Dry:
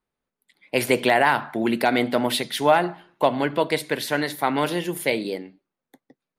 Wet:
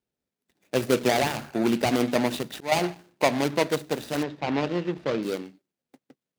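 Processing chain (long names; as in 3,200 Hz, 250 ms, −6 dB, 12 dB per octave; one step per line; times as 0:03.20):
running median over 41 samples
high-pass filter 58 Hz
high-shelf EQ 2,100 Hz +11 dB
0:02.21–0:02.72: volume swells 277 ms
0:04.23–0:05.23: high-frequency loss of the air 190 metres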